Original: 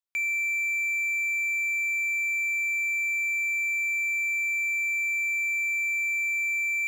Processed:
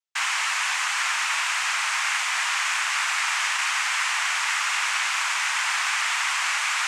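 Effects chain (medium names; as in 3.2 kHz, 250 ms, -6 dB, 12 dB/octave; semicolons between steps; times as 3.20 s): painted sound fall, 3.13–4.91 s, 1–3.1 kHz -40 dBFS; noise-vocoded speech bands 4; Bessel high-pass 790 Hz, order 4; trim +3 dB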